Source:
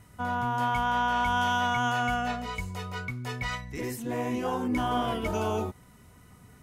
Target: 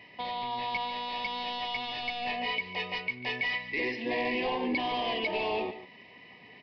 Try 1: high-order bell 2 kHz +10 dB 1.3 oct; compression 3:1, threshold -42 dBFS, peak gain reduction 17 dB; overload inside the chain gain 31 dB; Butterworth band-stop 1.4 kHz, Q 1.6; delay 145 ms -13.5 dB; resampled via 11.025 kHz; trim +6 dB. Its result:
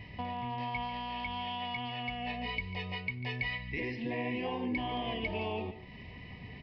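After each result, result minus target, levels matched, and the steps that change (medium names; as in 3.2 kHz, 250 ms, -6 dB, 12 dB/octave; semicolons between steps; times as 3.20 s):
compression: peak gain reduction +7.5 dB; 250 Hz band +4.0 dB
change: compression 3:1, threshold -31 dBFS, peak gain reduction 9.5 dB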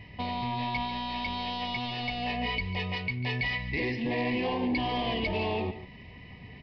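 250 Hz band +4.5 dB
add first: high-pass 350 Hz 12 dB/octave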